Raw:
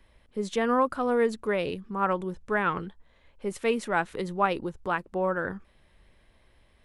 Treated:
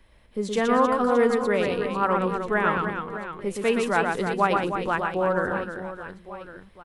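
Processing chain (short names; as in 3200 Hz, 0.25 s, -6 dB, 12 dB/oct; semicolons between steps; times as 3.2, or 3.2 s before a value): reverse bouncing-ball echo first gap 0.12 s, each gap 1.6×, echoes 5; gain +2.5 dB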